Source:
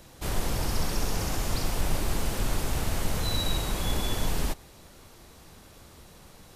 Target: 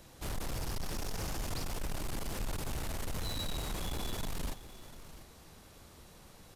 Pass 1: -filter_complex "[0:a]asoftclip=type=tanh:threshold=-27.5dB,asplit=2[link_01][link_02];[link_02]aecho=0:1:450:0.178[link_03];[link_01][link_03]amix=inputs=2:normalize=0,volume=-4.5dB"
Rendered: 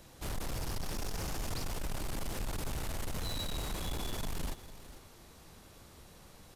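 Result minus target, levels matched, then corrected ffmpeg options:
echo 245 ms early
-filter_complex "[0:a]asoftclip=type=tanh:threshold=-27.5dB,asplit=2[link_01][link_02];[link_02]aecho=0:1:695:0.178[link_03];[link_01][link_03]amix=inputs=2:normalize=0,volume=-4.5dB"

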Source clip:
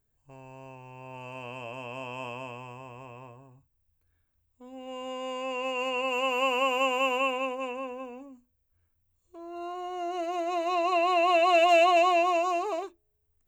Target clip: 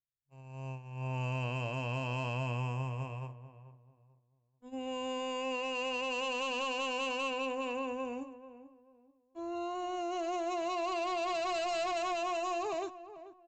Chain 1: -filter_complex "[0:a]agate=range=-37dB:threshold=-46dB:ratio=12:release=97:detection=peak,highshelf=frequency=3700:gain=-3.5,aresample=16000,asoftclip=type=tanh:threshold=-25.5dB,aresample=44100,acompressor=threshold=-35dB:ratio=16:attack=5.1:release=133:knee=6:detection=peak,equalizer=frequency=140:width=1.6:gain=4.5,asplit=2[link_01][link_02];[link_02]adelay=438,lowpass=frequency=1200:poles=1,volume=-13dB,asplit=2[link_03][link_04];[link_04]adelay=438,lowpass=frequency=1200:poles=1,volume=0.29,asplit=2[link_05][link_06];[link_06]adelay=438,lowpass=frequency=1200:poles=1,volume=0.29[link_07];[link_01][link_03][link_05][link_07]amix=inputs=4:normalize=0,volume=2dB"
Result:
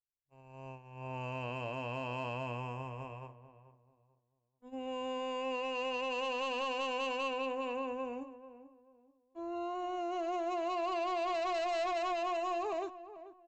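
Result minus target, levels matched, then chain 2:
125 Hz band −7.5 dB; 8,000 Hz band −6.5 dB
-filter_complex "[0:a]agate=range=-37dB:threshold=-46dB:ratio=12:release=97:detection=peak,highshelf=frequency=3700:gain=8,aresample=16000,asoftclip=type=tanh:threshold=-25.5dB,aresample=44100,acompressor=threshold=-35dB:ratio=16:attack=5.1:release=133:knee=6:detection=peak,equalizer=frequency=140:width=1.6:gain=15,asplit=2[link_01][link_02];[link_02]adelay=438,lowpass=frequency=1200:poles=1,volume=-13dB,asplit=2[link_03][link_04];[link_04]adelay=438,lowpass=frequency=1200:poles=1,volume=0.29,asplit=2[link_05][link_06];[link_06]adelay=438,lowpass=frequency=1200:poles=1,volume=0.29[link_07];[link_01][link_03][link_05][link_07]amix=inputs=4:normalize=0,volume=2dB"

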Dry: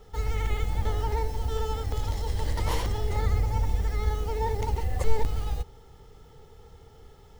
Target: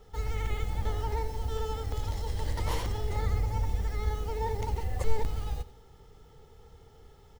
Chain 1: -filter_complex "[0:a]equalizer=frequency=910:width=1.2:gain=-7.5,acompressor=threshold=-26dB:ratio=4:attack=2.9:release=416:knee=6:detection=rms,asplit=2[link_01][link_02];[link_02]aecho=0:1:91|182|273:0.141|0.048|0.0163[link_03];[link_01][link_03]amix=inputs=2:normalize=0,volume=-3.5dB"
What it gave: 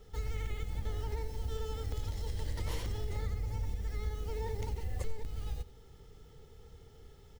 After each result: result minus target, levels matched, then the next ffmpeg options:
downward compressor: peak gain reduction +12.5 dB; 1,000 Hz band −6.0 dB
-filter_complex "[0:a]equalizer=frequency=910:width=1.2:gain=-7.5,asplit=2[link_01][link_02];[link_02]aecho=0:1:91|182|273:0.141|0.048|0.0163[link_03];[link_01][link_03]amix=inputs=2:normalize=0,volume=-3.5dB"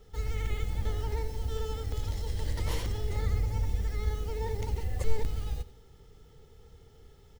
1,000 Hz band −6.5 dB
-filter_complex "[0:a]asplit=2[link_01][link_02];[link_02]aecho=0:1:91|182|273:0.141|0.048|0.0163[link_03];[link_01][link_03]amix=inputs=2:normalize=0,volume=-3.5dB"

